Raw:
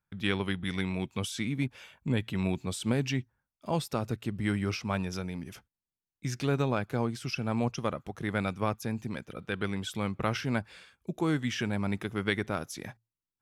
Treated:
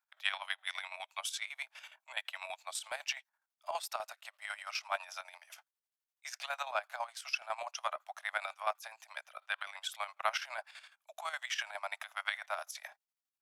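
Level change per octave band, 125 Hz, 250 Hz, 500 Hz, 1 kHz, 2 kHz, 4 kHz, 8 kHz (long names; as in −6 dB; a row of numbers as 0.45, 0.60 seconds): below −40 dB, below −40 dB, −11.0 dB, −1.5 dB, −1.5 dB, −1.5 dB, −1.5 dB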